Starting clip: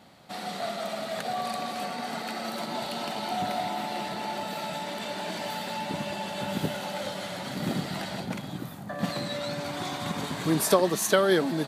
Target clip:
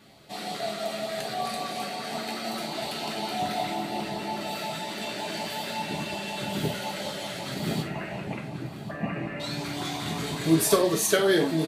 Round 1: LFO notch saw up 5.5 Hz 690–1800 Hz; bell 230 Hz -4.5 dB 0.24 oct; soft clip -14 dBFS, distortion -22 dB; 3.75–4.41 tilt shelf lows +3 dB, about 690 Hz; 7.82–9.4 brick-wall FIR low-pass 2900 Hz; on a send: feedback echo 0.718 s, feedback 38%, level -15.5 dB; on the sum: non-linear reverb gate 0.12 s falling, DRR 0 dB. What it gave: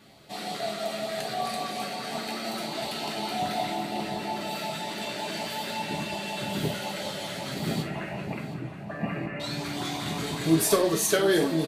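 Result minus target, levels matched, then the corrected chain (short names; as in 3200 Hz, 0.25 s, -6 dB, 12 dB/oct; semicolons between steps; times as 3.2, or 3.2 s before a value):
soft clip: distortion +13 dB; echo 0.369 s early
LFO notch saw up 5.5 Hz 690–1800 Hz; bell 230 Hz -4.5 dB 0.24 oct; soft clip -6.5 dBFS, distortion -35 dB; 3.75–4.41 tilt shelf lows +3 dB, about 690 Hz; 7.82–9.4 brick-wall FIR low-pass 2900 Hz; on a send: feedback echo 1.087 s, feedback 38%, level -15.5 dB; on the sum: non-linear reverb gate 0.12 s falling, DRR 0 dB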